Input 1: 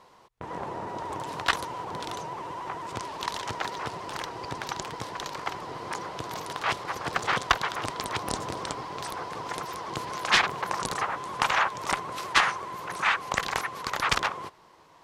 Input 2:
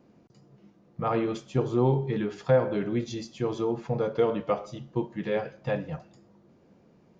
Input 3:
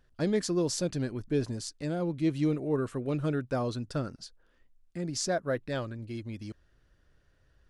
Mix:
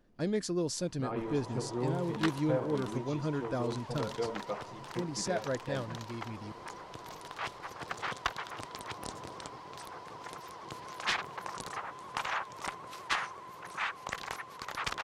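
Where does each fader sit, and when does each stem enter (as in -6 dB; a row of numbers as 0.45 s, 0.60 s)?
-10.5 dB, -11.0 dB, -4.0 dB; 0.75 s, 0.00 s, 0.00 s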